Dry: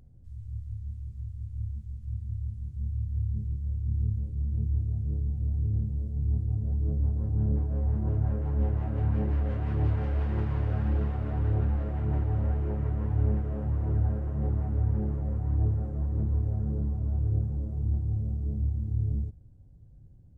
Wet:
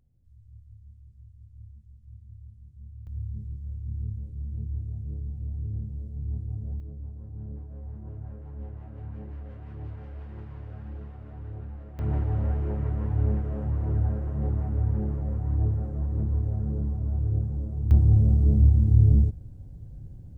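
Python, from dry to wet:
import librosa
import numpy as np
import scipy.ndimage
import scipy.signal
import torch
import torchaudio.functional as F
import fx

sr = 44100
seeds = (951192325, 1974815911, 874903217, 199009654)

y = fx.gain(x, sr, db=fx.steps((0.0, -12.5), (3.07, -4.5), (6.8, -12.0), (11.99, 1.0), (17.91, 11.0)))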